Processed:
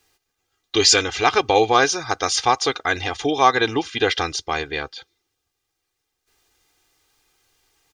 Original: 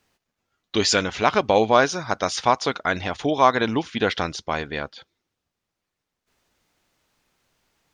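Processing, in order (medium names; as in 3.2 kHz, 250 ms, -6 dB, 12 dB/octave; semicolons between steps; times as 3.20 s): treble shelf 2.9 kHz +8 dB; comb 2.5 ms, depth 75%; trim -1 dB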